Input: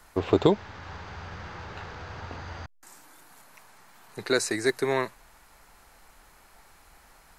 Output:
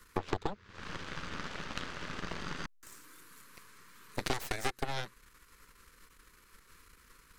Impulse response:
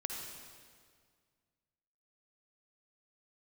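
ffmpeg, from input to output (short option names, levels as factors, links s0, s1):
-af "asuperstop=centerf=720:order=8:qfactor=1.5,acompressor=threshold=0.02:ratio=16,aeval=exprs='0.0891*(cos(1*acos(clip(val(0)/0.0891,-1,1)))-cos(1*PI/2))+0.02*(cos(4*acos(clip(val(0)/0.0891,-1,1)))-cos(4*PI/2))+0.002*(cos(5*acos(clip(val(0)/0.0891,-1,1)))-cos(5*PI/2))+0.02*(cos(7*acos(clip(val(0)/0.0891,-1,1)))-cos(7*PI/2))+0.00891*(cos(8*acos(clip(val(0)/0.0891,-1,1)))-cos(8*PI/2))':c=same,volume=1.41"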